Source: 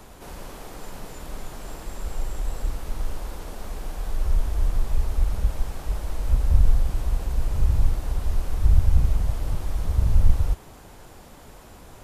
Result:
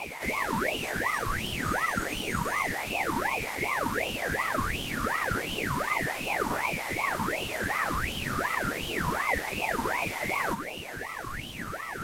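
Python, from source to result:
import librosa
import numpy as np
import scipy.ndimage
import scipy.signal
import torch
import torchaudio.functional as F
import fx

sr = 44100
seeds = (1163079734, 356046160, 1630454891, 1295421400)

y = fx.filter_lfo_highpass(x, sr, shape='sine', hz=1.5, low_hz=320.0, high_hz=1500.0, q=7.6)
y = fx.ring_lfo(y, sr, carrier_hz=1100.0, swing_pct=50, hz=2.7)
y = y * librosa.db_to_amplitude(8.5)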